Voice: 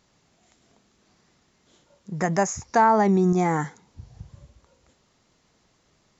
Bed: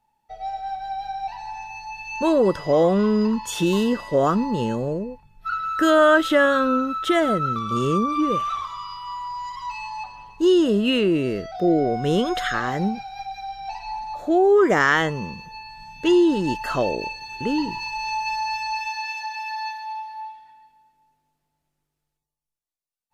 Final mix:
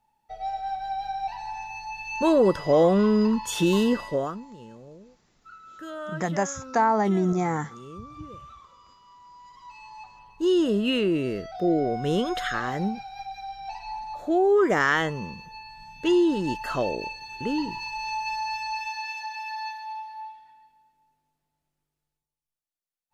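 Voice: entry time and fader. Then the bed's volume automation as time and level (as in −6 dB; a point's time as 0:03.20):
4.00 s, −3.5 dB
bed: 0:04.05 −1 dB
0:04.47 −21 dB
0:09.12 −21 dB
0:10.61 −4 dB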